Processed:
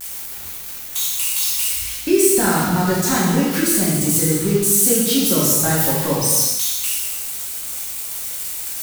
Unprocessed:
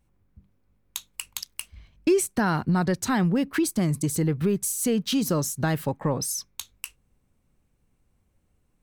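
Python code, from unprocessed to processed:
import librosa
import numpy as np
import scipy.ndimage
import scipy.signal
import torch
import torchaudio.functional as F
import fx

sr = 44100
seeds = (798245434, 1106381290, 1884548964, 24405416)

y = x + 0.5 * 10.0 ** (-20.0 / 20.0) * np.diff(np.sign(x), prepend=np.sign(x[:1]))
y = fx.add_hum(y, sr, base_hz=60, snr_db=34)
y = fx.hum_notches(y, sr, base_hz=50, count=3)
y = fx.rev_gated(y, sr, seeds[0], gate_ms=430, shape='falling', drr_db=-7.5)
y = y * 10.0 ** (-1.5 / 20.0)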